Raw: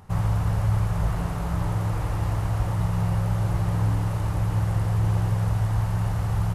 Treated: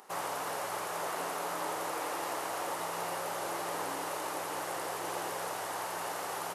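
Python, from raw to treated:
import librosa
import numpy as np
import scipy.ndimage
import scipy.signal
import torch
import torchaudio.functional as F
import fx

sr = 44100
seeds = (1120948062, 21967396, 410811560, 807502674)

y = scipy.signal.sosfilt(scipy.signal.butter(4, 340.0, 'highpass', fs=sr, output='sos'), x)
y = fx.high_shelf(y, sr, hz=4400.0, db=6.5)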